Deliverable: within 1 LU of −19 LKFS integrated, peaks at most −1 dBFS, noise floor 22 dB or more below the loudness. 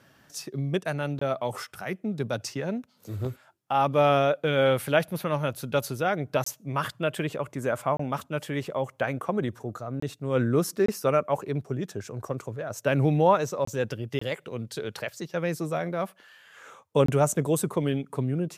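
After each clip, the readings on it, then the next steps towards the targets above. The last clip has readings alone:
number of dropouts 8; longest dropout 24 ms; integrated loudness −28.0 LKFS; sample peak −8.5 dBFS; target loudness −19.0 LKFS
→ repair the gap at 0:01.19/0:06.44/0:07.97/0:10.00/0:10.86/0:13.65/0:14.19/0:17.06, 24 ms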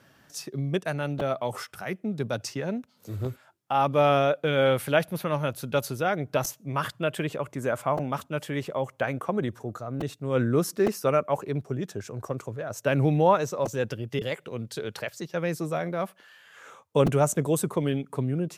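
number of dropouts 0; integrated loudness −28.0 LKFS; sample peak −8.5 dBFS; target loudness −19.0 LKFS
→ level +9 dB
brickwall limiter −1 dBFS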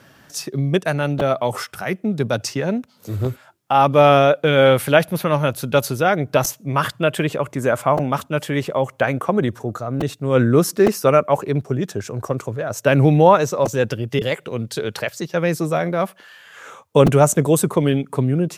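integrated loudness −19.0 LKFS; sample peak −1.0 dBFS; background noise floor −53 dBFS

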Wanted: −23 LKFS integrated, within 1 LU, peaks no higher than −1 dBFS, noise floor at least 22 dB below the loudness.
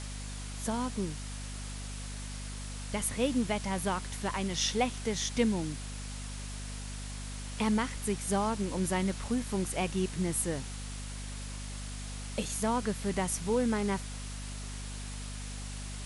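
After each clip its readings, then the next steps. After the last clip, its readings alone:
mains hum 50 Hz; hum harmonics up to 250 Hz; level of the hum −38 dBFS; background noise floor −40 dBFS; target noise floor −56 dBFS; integrated loudness −34.0 LKFS; sample peak −15.5 dBFS; target loudness −23.0 LKFS
→ hum removal 50 Hz, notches 5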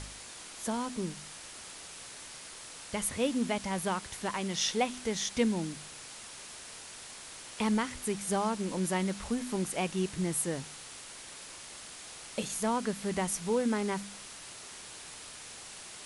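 mains hum none found; background noise floor −47 dBFS; target noise floor −57 dBFS
→ noise reduction from a noise print 10 dB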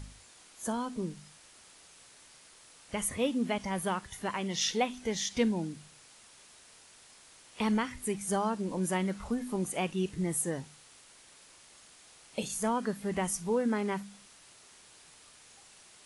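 background noise floor −57 dBFS; integrated loudness −33.0 LKFS; sample peak −16.0 dBFS; target loudness −23.0 LKFS
→ level +10 dB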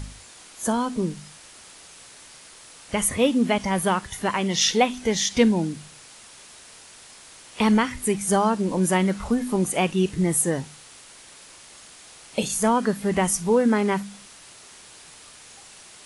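integrated loudness −23.0 LKFS; sample peak −6.0 dBFS; background noise floor −47 dBFS

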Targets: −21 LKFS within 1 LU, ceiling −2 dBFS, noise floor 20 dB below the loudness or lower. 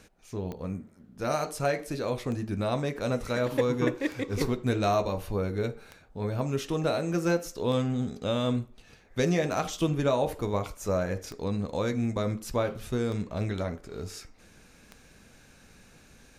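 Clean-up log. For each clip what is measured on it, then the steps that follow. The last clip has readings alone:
number of clicks 9; integrated loudness −30.0 LKFS; sample peak −12.5 dBFS; target loudness −21.0 LKFS
→ click removal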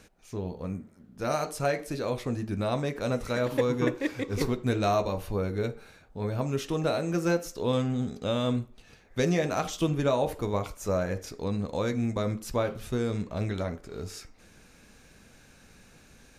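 number of clicks 0; integrated loudness −30.0 LKFS; sample peak −12.5 dBFS; target loudness −21.0 LKFS
→ level +9 dB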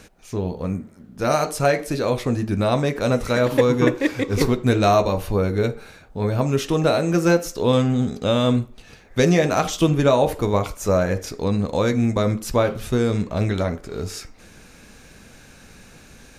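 integrated loudness −21.0 LKFS; sample peak −3.5 dBFS; background noise floor −47 dBFS

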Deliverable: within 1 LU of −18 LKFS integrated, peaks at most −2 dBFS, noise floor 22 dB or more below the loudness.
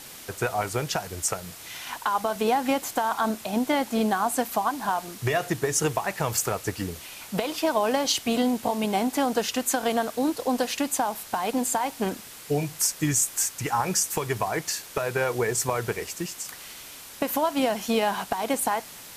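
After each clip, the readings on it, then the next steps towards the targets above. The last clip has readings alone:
background noise floor −44 dBFS; target noise floor −49 dBFS; integrated loudness −26.5 LKFS; sample peak −9.5 dBFS; target loudness −18.0 LKFS
→ noise reduction from a noise print 6 dB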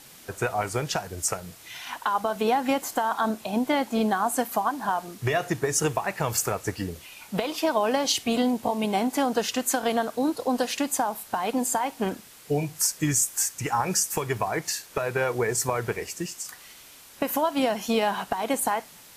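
background noise floor −49 dBFS; integrated loudness −26.5 LKFS; sample peak −9.5 dBFS; target loudness −18.0 LKFS
→ level +8.5 dB
brickwall limiter −2 dBFS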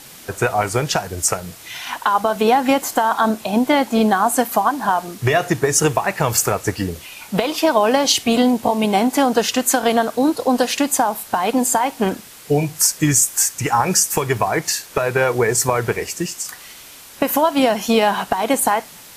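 integrated loudness −18.0 LKFS; sample peak −2.0 dBFS; background noise floor −41 dBFS

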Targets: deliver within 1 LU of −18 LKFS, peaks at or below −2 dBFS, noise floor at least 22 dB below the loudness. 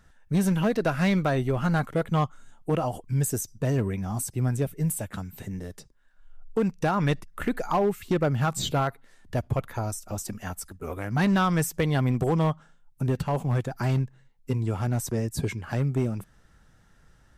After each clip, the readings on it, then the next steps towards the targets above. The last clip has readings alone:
share of clipped samples 0.9%; peaks flattened at −17.5 dBFS; integrated loudness −27.5 LKFS; sample peak −17.5 dBFS; target loudness −18.0 LKFS
→ clipped peaks rebuilt −17.5 dBFS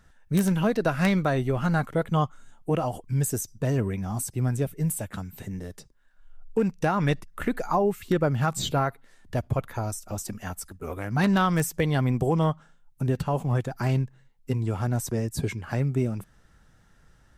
share of clipped samples 0.0%; integrated loudness −27.0 LKFS; sample peak −8.5 dBFS; target loudness −18.0 LKFS
→ level +9 dB
brickwall limiter −2 dBFS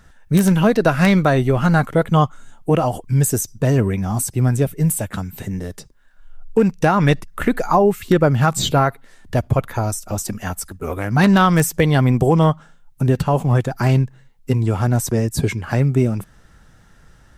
integrated loudness −18.0 LKFS; sample peak −2.0 dBFS; background noise floor −50 dBFS

